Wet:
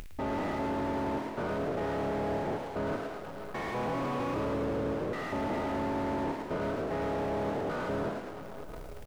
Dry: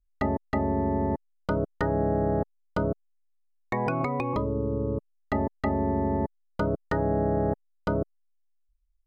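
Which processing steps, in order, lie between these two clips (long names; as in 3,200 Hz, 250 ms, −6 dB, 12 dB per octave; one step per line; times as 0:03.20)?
spectrum averaged block by block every 200 ms
coupled-rooms reverb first 0.38 s, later 2.3 s, from −19 dB, DRR 18 dB
in parallel at −9.5 dB: wave folding −31 dBFS
on the sum: upward compression, threshold −29 dBFS
parametric band 2,200 Hz +6.5 dB 1.4 octaves
reversed playback
downward compressor, threshold −29 dBFS, peak gain reduction 7.5 dB
reversed playback
power curve on the samples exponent 0.5
low-shelf EQ 230 Hz −9 dB
echo with shifted repeats 108 ms, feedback 56%, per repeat +41 Hz, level −10.5 dB
slew-rate limiting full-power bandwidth 26 Hz
level −1.5 dB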